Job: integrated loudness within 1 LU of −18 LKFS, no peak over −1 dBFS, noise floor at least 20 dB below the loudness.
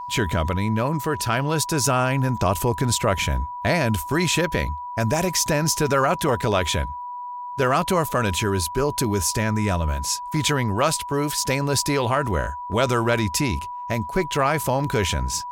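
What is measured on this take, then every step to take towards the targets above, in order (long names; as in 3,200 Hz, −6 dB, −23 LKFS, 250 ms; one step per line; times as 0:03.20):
interfering tone 980 Hz; level of the tone −30 dBFS; integrated loudness −22.5 LKFS; sample peak −7.0 dBFS; target loudness −18.0 LKFS
→ notch filter 980 Hz, Q 30
level +4.5 dB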